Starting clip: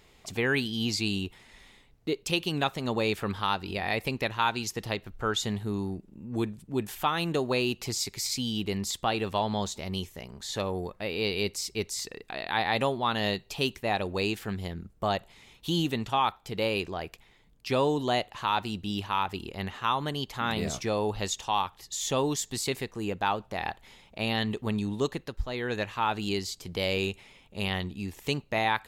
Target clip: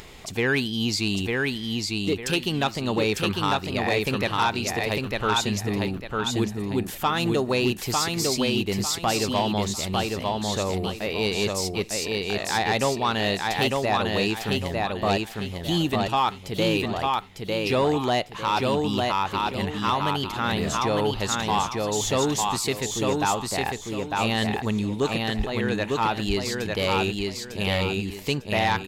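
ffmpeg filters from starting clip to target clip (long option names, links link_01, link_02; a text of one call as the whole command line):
ffmpeg -i in.wav -af "aecho=1:1:901|1802|2703|3604:0.708|0.212|0.0637|0.0191,aeval=exprs='0.398*(cos(1*acos(clip(val(0)/0.398,-1,1)))-cos(1*PI/2))+0.0891*(cos(5*acos(clip(val(0)/0.398,-1,1)))-cos(5*PI/2))':channel_layout=same,acompressor=mode=upward:threshold=-33dB:ratio=2.5,volume=-2dB" out.wav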